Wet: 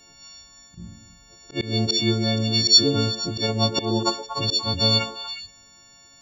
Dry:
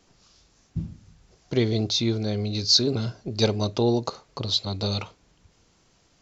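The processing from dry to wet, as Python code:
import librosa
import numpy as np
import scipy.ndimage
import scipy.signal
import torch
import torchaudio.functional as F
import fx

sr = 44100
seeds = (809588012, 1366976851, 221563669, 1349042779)

y = fx.freq_snap(x, sr, grid_st=4)
y = fx.auto_swell(y, sr, attack_ms=200.0)
y = fx.echo_stepped(y, sr, ms=119, hz=380.0, octaves=1.4, feedback_pct=70, wet_db=-3)
y = F.gain(torch.from_numpy(y), 3.5).numpy()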